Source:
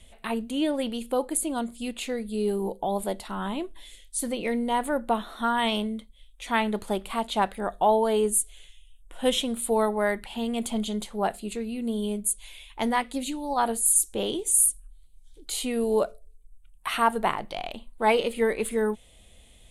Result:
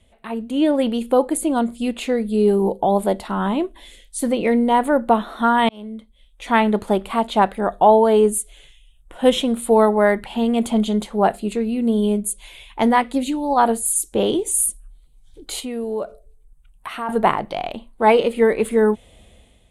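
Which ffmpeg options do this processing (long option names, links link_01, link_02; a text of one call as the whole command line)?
ffmpeg -i in.wav -filter_complex "[0:a]asettb=1/sr,asplit=3[link_01][link_02][link_03];[link_01]atrim=end=15.604[link_04];[link_02]atrim=start=15.6:end=17.09,asetpts=PTS-STARTPTS,afade=type=in:duration=0.004:curve=qsin,afade=type=out:start_time=1.486:duration=0.004:curve=qsin,acompressor=threshold=-42dB:ratio=2:attack=3.2:release=140:knee=1:detection=peak[link_05];[link_03]atrim=start=17.086[link_06];[link_04][link_05]acrossfade=duration=0.004:curve1=hsin:curve2=qsin[link_07];[link_07][link_06]acrossfade=duration=0.004:curve1=qsin:curve2=hsin,asplit=2[link_08][link_09];[link_08]atrim=end=5.69,asetpts=PTS-STARTPTS,afade=type=out:start_time=5.686:duration=0.004:curve=hsin[link_10];[link_09]atrim=start=5.69,asetpts=PTS-STARTPTS,afade=type=in:duration=0.76[link_11];[link_10][link_11]concat=n=2:v=0:a=1,highpass=frequency=54:poles=1,highshelf=frequency=2400:gain=-10.5,dynaudnorm=framelen=150:gausssize=7:maxgain=11dB" out.wav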